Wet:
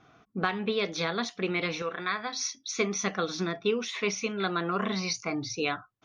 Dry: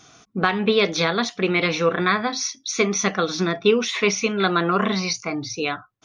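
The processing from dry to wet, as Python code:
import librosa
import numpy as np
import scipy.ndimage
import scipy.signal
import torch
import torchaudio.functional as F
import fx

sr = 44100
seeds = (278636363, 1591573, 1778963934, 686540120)

y = fx.rider(x, sr, range_db=4, speed_s=0.5)
y = fx.env_lowpass(y, sr, base_hz=1800.0, full_db=-20.0)
y = fx.low_shelf(y, sr, hz=480.0, db=-10.5, at=(1.82, 2.4))
y = y * 10.0 ** (-8.5 / 20.0)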